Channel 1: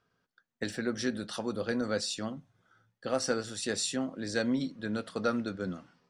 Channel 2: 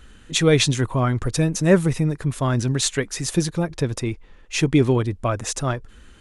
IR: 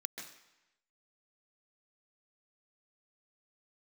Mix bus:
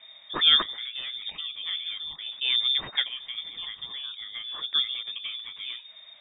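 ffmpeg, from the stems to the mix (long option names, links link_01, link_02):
-filter_complex "[0:a]acrossover=split=600|4700[link_01][link_02][link_03];[link_01]acompressor=threshold=-39dB:ratio=4[link_04];[link_02]acompressor=threshold=-45dB:ratio=4[link_05];[link_03]acompressor=threshold=-43dB:ratio=4[link_06];[link_04][link_05][link_06]amix=inputs=3:normalize=0,volume=1.5dB,asplit=2[link_07][link_08];[1:a]volume=-3.5dB[link_09];[link_08]apad=whole_len=273530[link_10];[link_09][link_10]sidechaincompress=threshold=-47dB:ratio=12:attack=5.4:release=225[link_11];[link_07][link_11]amix=inputs=2:normalize=0,lowpass=frequency=3100:width_type=q:width=0.5098,lowpass=frequency=3100:width_type=q:width=0.6013,lowpass=frequency=3100:width_type=q:width=0.9,lowpass=frequency=3100:width_type=q:width=2.563,afreqshift=-3700"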